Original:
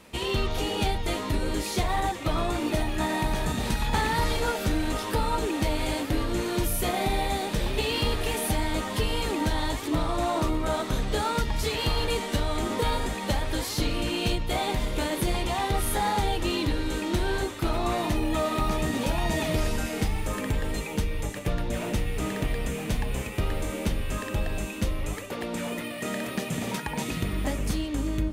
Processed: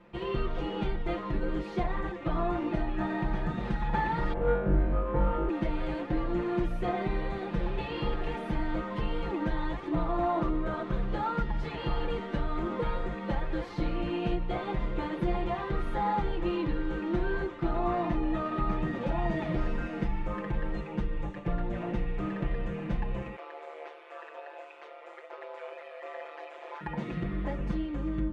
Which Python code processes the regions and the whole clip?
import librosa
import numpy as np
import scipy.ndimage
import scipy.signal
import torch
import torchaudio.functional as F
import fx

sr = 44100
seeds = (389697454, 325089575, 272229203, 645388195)

y = fx.chain(x, sr, fx.median_filter(points=25),
    fx.lowpass(hz=2800.0, slope=12),
    fx.room_flutter(wall_m=3.6, rt60_s=0.65), at=(4.33, 5.49))
y = fx.chain(y, sr, fx.delta_mod(bps=64000, step_db=-44.0),
    fx.steep_highpass(hz=480.0, slope=48),
    fx.ring_mod(carrier_hz=75.0), at=(23.36, 26.81))
y = scipy.signal.sosfilt(scipy.signal.butter(2, 1700.0, 'lowpass', fs=sr, output='sos'), y)
y = y + 0.98 * np.pad(y, (int(5.8 * sr / 1000.0), 0))[:len(y)]
y = F.gain(torch.from_numpy(y), -6.0).numpy()